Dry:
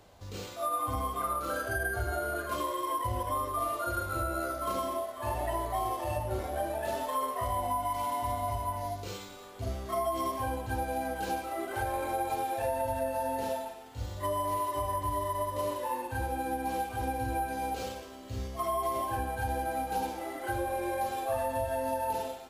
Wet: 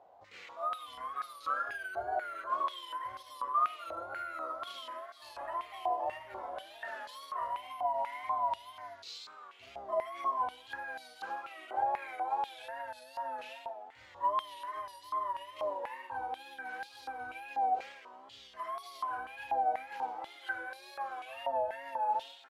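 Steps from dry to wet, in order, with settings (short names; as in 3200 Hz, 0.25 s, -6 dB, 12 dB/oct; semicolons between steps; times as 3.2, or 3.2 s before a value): wow and flutter 86 cents; stepped band-pass 4.1 Hz 760–4300 Hz; gain +5.5 dB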